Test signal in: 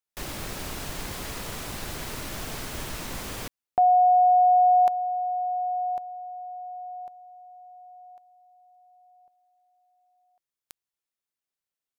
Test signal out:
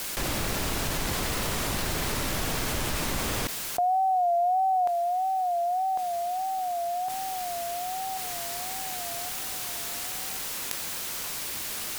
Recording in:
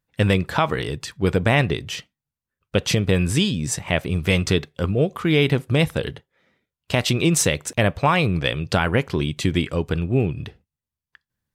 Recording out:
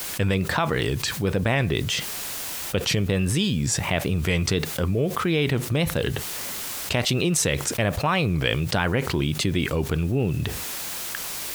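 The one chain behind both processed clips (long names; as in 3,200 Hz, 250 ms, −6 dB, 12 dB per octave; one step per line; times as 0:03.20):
background noise white −52 dBFS
tape wow and flutter 1.4 Hz 88 cents
envelope flattener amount 70%
level −6 dB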